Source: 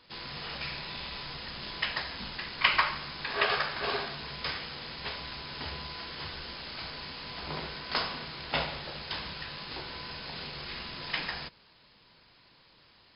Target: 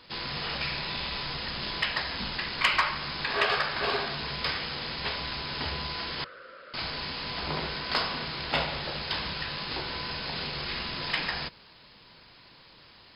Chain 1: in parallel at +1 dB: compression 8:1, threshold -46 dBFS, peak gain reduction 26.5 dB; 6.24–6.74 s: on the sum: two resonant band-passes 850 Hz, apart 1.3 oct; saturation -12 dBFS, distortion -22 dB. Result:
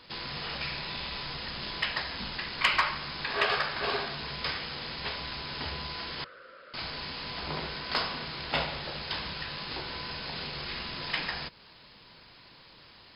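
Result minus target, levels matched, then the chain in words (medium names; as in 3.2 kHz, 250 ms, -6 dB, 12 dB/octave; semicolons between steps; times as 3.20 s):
compression: peak gain reduction +9.5 dB
in parallel at +1 dB: compression 8:1, threshold -35 dBFS, peak gain reduction 16.5 dB; 6.24–6.74 s: on the sum: two resonant band-passes 850 Hz, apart 1.3 oct; saturation -12 dBFS, distortion -22 dB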